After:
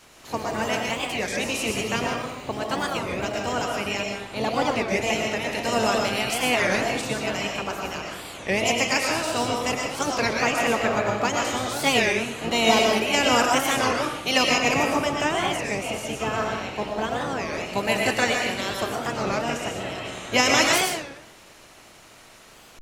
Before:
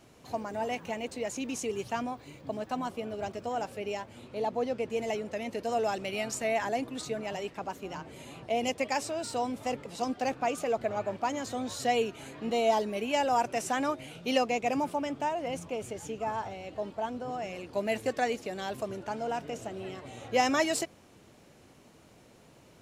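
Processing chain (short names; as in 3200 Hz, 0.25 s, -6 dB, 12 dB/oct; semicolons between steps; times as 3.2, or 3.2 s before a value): spectral limiter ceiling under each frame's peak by 17 dB; digital reverb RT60 0.81 s, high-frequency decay 0.75×, pre-delay 75 ms, DRR 0 dB; record warp 33 1/3 rpm, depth 250 cents; gain +5.5 dB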